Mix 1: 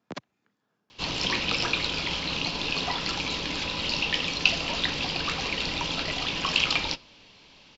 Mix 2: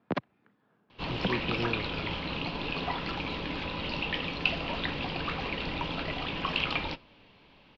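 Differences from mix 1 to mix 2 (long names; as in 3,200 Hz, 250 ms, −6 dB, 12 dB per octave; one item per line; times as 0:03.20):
speech +8.5 dB
master: add high-frequency loss of the air 380 metres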